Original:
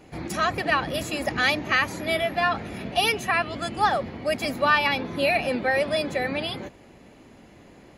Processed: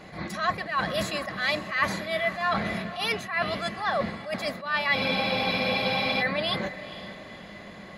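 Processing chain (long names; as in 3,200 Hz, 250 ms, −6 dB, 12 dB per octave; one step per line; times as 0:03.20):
graphic EQ with 15 bands 250 Hz −8 dB, 630 Hz +8 dB, 1,600 Hz +9 dB, 4,000 Hz +10 dB
reversed playback
downward compressor, threshold −26 dBFS, peak gain reduction 16 dB
reversed playback
hollow resonant body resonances 200/1,100/2,000 Hz, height 14 dB, ringing for 60 ms
on a send: feedback delay with all-pass diffusion 486 ms, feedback 43%, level −14 dB
on the sum: frozen spectrum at 0:04.96, 1.24 s
level that may rise only so fast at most 120 dB per second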